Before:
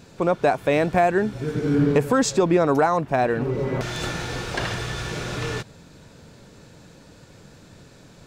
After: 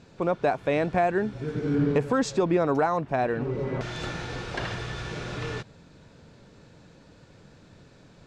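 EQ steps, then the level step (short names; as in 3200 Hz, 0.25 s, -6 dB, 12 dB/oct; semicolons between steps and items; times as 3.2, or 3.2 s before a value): air absorption 77 m; -4.5 dB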